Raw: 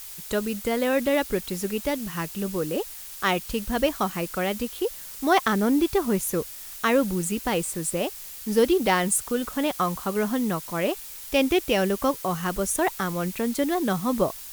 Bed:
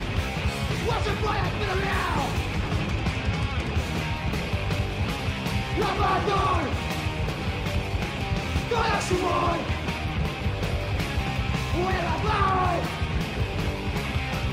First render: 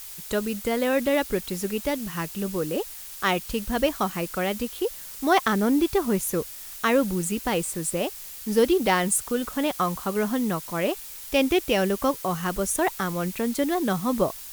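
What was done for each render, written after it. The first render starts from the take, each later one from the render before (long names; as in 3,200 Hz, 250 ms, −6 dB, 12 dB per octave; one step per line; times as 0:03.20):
no processing that can be heard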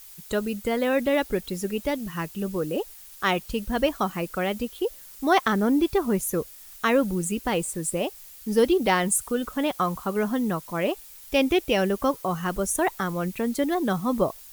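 broadband denoise 8 dB, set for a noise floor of −40 dBFS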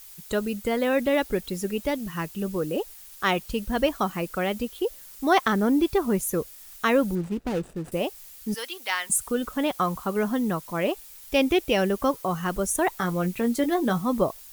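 0:07.15–0:07.92: running median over 41 samples
0:08.54–0:09.10: high-pass filter 1,400 Hz
0:12.98–0:14.02: double-tracking delay 17 ms −8 dB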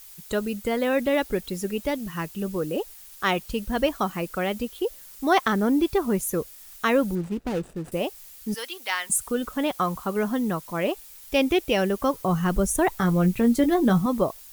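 0:12.15–0:14.06: low-shelf EQ 220 Hz +11.5 dB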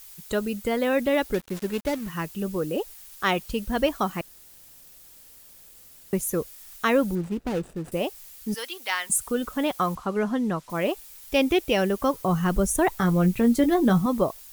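0:01.34–0:02.09: gap after every zero crossing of 0.13 ms
0:04.21–0:06.13: fill with room tone
0:09.95–0:10.70: high-frequency loss of the air 57 metres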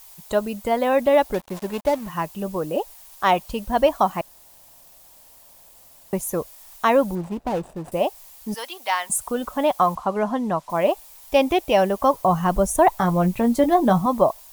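flat-topped bell 790 Hz +10 dB 1.1 octaves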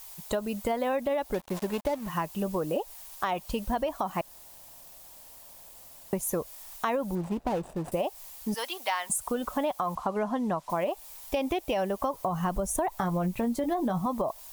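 brickwall limiter −12 dBFS, peak gain reduction 7 dB
downward compressor, threshold −26 dBFS, peak gain reduction 10 dB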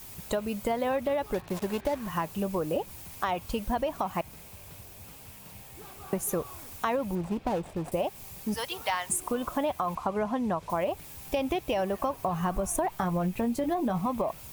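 mix in bed −24 dB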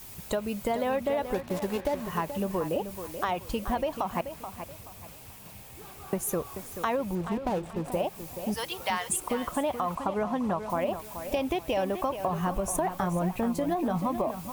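tape delay 431 ms, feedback 32%, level −9 dB, low-pass 5,000 Hz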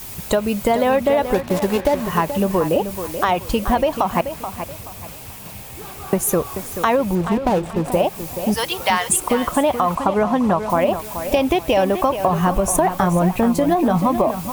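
level +11.5 dB
brickwall limiter −3 dBFS, peak gain reduction 1 dB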